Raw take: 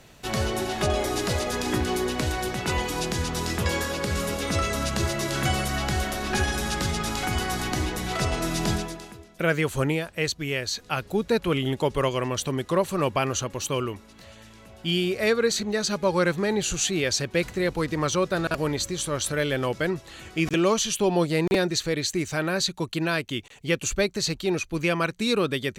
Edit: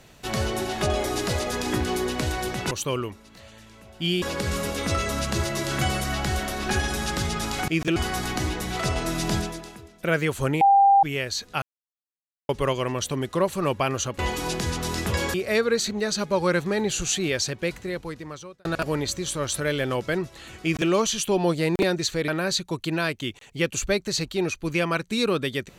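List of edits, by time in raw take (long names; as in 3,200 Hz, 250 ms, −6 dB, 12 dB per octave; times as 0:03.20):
0:02.71–0:03.86: swap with 0:13.55–0:15.06
0:09.97–0:10.39: beep over 794 Hz −12.5 dBFS
0:10.98–0:11.85: silence
0:16.99–0:18.37: fade out
0:20.34–0:20.62: duplicate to 0:07.32
0:22.00–0:22.37: remove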